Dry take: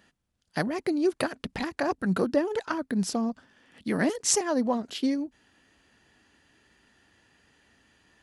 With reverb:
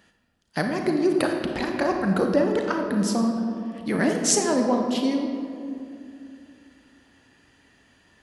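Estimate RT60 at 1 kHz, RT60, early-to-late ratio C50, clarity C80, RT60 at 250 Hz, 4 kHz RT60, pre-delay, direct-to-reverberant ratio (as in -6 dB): 2.3 s, 2.6 s, 4.0 dB, 5.5 dB, 3.2 s, 1.3 s, 34 ms, 3.0 dB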